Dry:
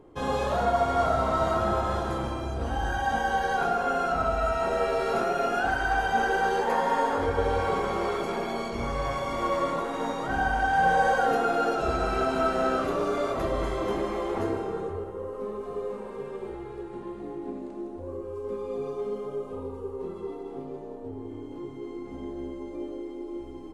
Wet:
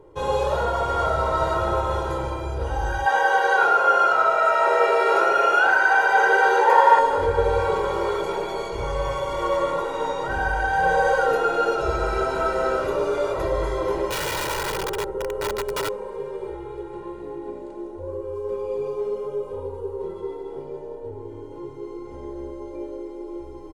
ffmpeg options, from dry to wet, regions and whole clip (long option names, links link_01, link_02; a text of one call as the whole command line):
ffmpeg -i in.wav -filter_complex "[0:a]asettb=1/sr,asplit=3[link_01][link_02][link_03];[link_01]atrim=end=3.064[link_04];[link_02]atrim=start=3.06:end=6.99,asetpts=PTS-STARTPTS,afade=type=in:duration=0.004:curve=qsin,afade=type=out:start_time=3.926:duration=0.004:curve=qsin,highpass=360,equalizer=frequency=1400:width=0.49:gain=7,asplit=4[link_05][link_06][link_07][link_08];[link_06]adelay=83,afreqshift=-54,volume=-12dB[link_09];[link_07]adelay=166,afreqshift=-108,volume=-21.6dB[link_10];[link_08]adelay=249,afreqshift=-162,volume=-31.3dB[link_11];[link_05][link_09][link_10][link_11]amix=inputs=4:normalize=0,atrim=end_sample=173313[link_12];[link_03]atrim=start=6.986[link_13];[link_04][link_12]acrossfade=duration=0.004:curve1=hsin:curve2=qsin[link_14];[link_14][link_13]acrossfade=duration=0.004:curve1=qsin:curve2=hsin,asettb=1/sr,asplit=3[link_15][link_16][link_17];[link_15]atrim=end=14.104[link_18];[link_16]atrim=start=14.1:end=15.89,asetpts=PTS-STARTPTS,afade=type=in:duration=0.004:curve=qsin,afade=type=out:start_time=1.786:duration=0.004:curve=qsin,aecho=1:1:5.2:0.9,atrim=end_sample=78939,aeval=exprs='val(0)+0.00447*(sin(2*PI*60*n/s)+sin(2*PI*2*60*n/s)/2+sin(2*PI*3*60*n/s)/3+sin(2*PI*4*60*n/s)/4+sin(2*PI*5*60*n/s)/5)':channel_layout=same,aeval=exprs='(mod(16.8*val(0)+1,2)-1)/16.8':channel_layout=same[link_19];[link_17]atrim=start=15.886[link_20];[link_18][link_19]acrossfade=duration=0.004:curve1=hsin:curve2=qsin[link_21];[link_21][link_20]acrossfade=duration=0.004:curve1=qsin:curve2=hsin,equalizer=frequency=720:width=1.4:gain=3.5,aecho=1:1:2.1:0.81" out.wav